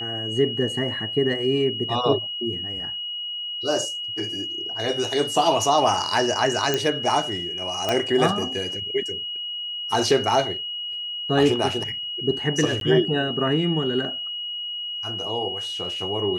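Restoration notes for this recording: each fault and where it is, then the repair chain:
whistle 2,900 Hz −28 dBFS
0:06.74: click −7 dBFS
0:07.89: click −8 dBFS
0:12.80–0:12.81: drop-out 12 ms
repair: click removal
notch filter 2,900 Hz, Q 30
repair the gap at 0:12.80, 12 ms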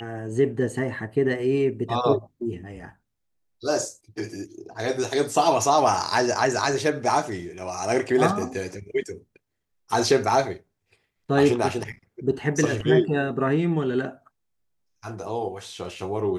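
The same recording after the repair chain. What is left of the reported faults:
none of them is left

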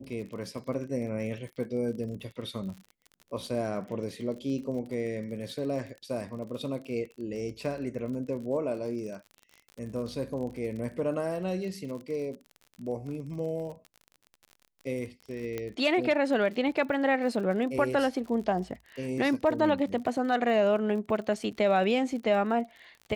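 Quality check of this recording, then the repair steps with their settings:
surface crackle 44 per second −38 dBFS
0:15.58: click −20 dBFS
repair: click removal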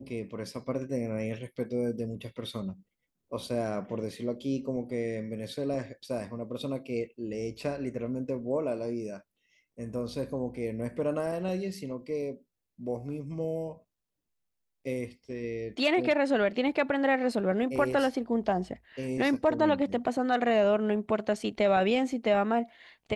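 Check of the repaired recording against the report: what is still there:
none of them is left

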